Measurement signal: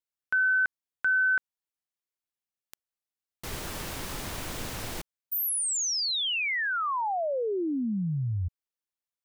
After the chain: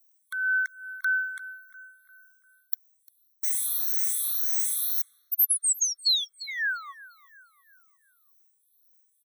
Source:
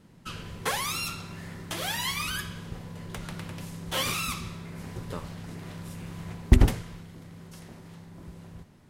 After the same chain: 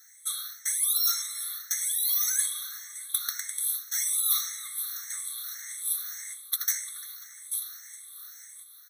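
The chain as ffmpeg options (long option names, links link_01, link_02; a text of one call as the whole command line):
ffmpeg -i in.wav -filter_complex "[0:a]afftfilt=real='re*pow(10,16/40*sin(2*PI*(0.57*log(max(b,1)*sr/1024/100)/log(2)-(1.8)*(pts-256)/sr)))':imag='im*pow(10,16/40*sin(2*PI*(0.57*log(max(b,1)*sr/1024/100)/log(2)-(1.8)*(pts-256)/sr)))':win_size=1024:overlap=0.75,asplit=2[link_01][link_02];[link_02]adelay=348,lowpass=frequency=2200:poles=1,volume=-17.5dB,asplit=2[link_03][link_04];[link_04]adelay=348,lowpass=frequency=2200:poles=1,volume=0.49,asplit=2[link_05][link_06];[link_06]adelay=348,lowpass=frequency=2200:poles=1,volume=0.49,asplit=2[link_07][link_08];[link_08]adelay=348,lowpass=frequency=2200:poles=1,volume=0.49[link_09];[link_03][link_05][link_07][link_09]amix=inputs=4:normalize=0[link_10];[link_01][link_10]amix=inputs=2:normalize=0,crystalizer=i=8:c=0,highshelf=frequency=9600:gain=11,acrossover=split=470|1800[link_11][link_12][link_13];[link_12]acompressor=threshold=-23dB:ratio=6:attack=2.5:release=718:knee=2.83:detection=peak[link_14];[link_11][link_14][link_13]amix=inputs=3:normalize=0,highshelf=frequency=2400:gain=8,areverse,acompressor=threshold=-11dB:ratio=8:attack=43:release=279:knee=1:detection=rms,areverse,afftfilt=real='re*eq(mod(floor(b*sr/1024/1100),2),1)':imag='im*eq(mod(floor(b*sr/1024/1100),2),1)':win_size=1024:overlap=0.75,volume=-11dB" out.wav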